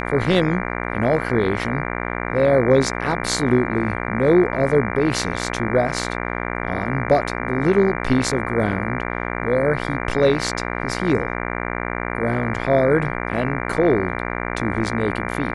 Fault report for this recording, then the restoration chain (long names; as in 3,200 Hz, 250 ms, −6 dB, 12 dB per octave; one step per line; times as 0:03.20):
mains buzz 60 Hz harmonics 39 −26 dBFS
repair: hum removal 60 Hz, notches 39